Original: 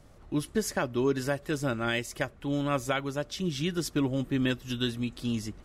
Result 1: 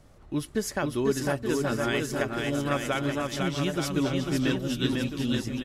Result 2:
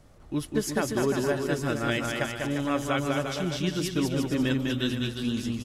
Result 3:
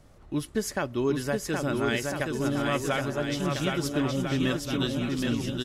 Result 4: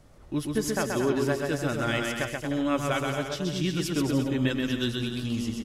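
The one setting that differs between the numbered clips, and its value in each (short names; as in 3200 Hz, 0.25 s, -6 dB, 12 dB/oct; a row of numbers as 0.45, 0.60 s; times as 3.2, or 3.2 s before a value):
bouncing-ball echo, first gap: 0.5, 0.2, 0.77, 0.13 s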